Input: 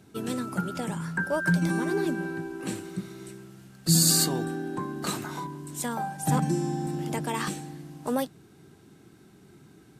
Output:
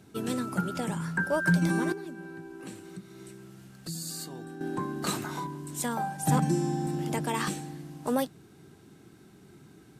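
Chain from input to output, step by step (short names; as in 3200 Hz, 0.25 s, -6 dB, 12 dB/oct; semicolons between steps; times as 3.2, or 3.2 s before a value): 1.92–4.61 compressor 2.5:1, threshold -44 dBFS, peak gain reduction 17.5 dB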